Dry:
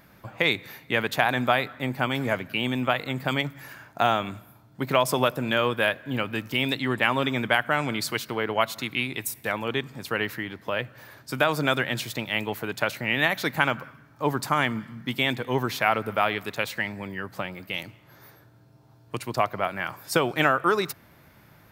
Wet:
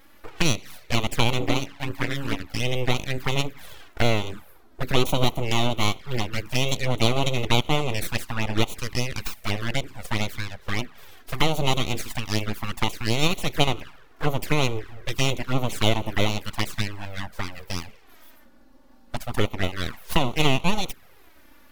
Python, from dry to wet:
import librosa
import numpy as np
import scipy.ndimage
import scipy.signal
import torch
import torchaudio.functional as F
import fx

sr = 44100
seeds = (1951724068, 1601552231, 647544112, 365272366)

y = fx.ring_mod(x, sr, carrier_hz=140.0, at=(1.4, 2.6))
y = np.abs(y)
y = fx.env_flanger(y, sr, rest_ms=3.8, full_db=-22.5)
y = F.gain(torch.from_numpy(y), 5.5).numpy()